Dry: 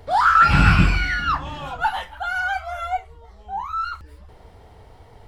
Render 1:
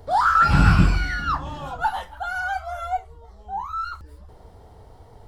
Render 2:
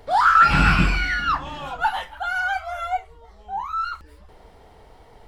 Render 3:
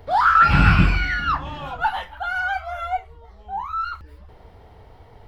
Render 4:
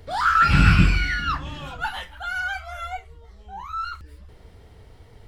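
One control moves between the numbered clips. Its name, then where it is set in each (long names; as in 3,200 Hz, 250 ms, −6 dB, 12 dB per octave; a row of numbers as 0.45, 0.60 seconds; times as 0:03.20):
parametric band, centre frequency: 2,400, 94, 8,300, 820 Hertz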